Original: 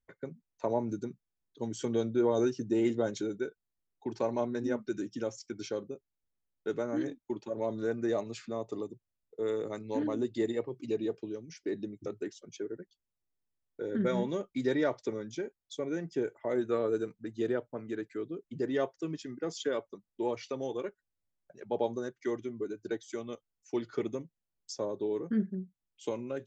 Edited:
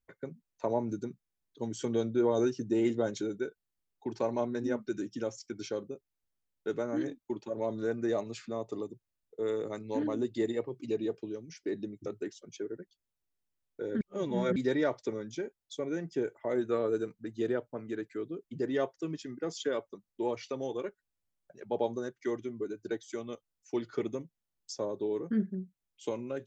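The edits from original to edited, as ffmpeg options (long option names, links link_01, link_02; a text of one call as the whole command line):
ffmpeg -i in.wav -filter_complex "[0:a]asplit=3[link_01][link_02][link_03];[link_01]atrim=end=14.012[link_04];[link_02]atrim=start=14.008:end=14.562,asetpts=PTS-STARTPTS,areverse[link_05];[link_03]atrim=start=14.558[link_06];[link_04][link_05]acrossfade=duration=0.004:curve1=hsin:curve2=hsin[link_07];[link_07][link_06]acrossfade=duration=0.004:curve1=hsin:curve2=hsin" out.wav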